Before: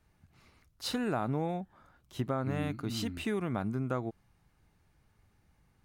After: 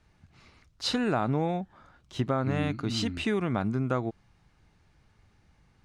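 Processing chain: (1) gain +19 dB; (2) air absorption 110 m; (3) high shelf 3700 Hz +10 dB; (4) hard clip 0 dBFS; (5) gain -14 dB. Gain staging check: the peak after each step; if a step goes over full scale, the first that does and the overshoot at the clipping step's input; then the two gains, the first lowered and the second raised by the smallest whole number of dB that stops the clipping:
-1.5, -2.0, -1.5, -1.5, -15.5 dBFS; no overload

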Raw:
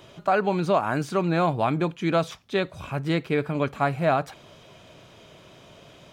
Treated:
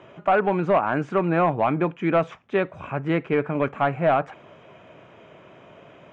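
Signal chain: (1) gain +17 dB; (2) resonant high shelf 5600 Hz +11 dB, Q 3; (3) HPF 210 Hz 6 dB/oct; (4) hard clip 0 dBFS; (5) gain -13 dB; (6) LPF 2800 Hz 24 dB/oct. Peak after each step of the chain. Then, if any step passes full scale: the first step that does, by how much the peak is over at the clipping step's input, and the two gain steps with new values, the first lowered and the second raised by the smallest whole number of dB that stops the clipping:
+7.5, +7.0, +8.0, 0.0, -13.0, -11.5 dBFS; step 1, 8.0 dB; step 1 +9 dB, step 5 -5 dB

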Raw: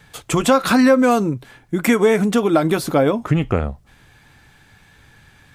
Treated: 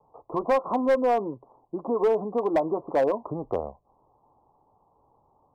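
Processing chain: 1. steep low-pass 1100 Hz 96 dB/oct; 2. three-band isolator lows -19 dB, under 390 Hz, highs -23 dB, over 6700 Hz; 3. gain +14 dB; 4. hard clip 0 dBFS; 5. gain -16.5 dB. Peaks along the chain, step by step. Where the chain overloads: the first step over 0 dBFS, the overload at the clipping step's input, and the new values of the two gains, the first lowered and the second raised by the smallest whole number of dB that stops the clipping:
-5.0, -7.5, +6.5, 0.0, -16.5 dBFS; step 3, 6.5 dB; step 3 +7 dB, step 5 -9.5 dB

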